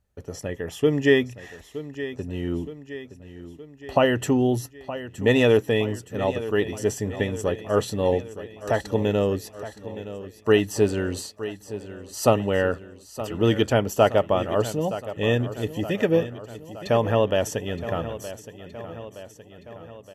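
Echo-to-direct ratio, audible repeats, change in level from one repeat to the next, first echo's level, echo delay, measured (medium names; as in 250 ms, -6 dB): -12.0 dB, 5, -5.0 dB, -13.5 dB, 919 ms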